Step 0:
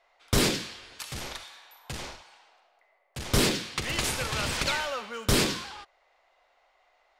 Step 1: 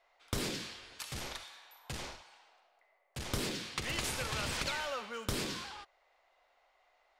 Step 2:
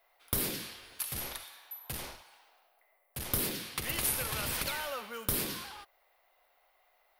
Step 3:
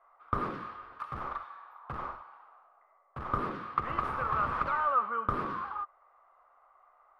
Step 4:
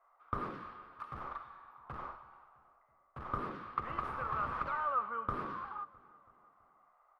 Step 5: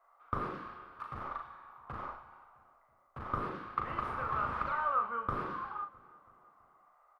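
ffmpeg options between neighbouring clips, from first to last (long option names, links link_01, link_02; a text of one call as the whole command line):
ffmpeg -i in.wav -af "acompressor=threshold=-27dB:ratio=10,volume=-4.5dB" out.wav
ffmpeg -i in.wav -af "aexciter=amount=5.6:drive=8.4:freq=10000" out.wav
ffmpeg -i in.wav -af "lowpass=frequency=1200:width_type=q:width=10" out.wav
ffmpeg -i in.wav -filter_complex "[0:a]asplit=2[link_01][link_02];[link_02]adelay=329,lowpass=frequency=4100:poles=1,volume=-21dB,asplit=2[link_03][link_04];[link_04]adelay=329,lowpass=frequency=4100:poles=1,volume=0.55,asplit=2[link_05][link_06];[link_06]adelay=329,lowpass=frequency=4100:poles=1,volume=0.55,asplit=2[link_07][link_08];[link_08]adelay=329,lowpass=frequency=4100:poles=1,volume=0.55[link_09];[link_01][link_03][link_05][link_07][link_09]amix=inputs=5:normalize=0,volume=-6dB" out.wav
ffmpeg -i in.wav -filter_complex "[0:a]asplit=2[link_01][link_02];[link_02]adelay=38,volume=-6dB[link_03];[link_01][link_03]amix=inputs=2:normalize=0,volume=1.5dB" out.wav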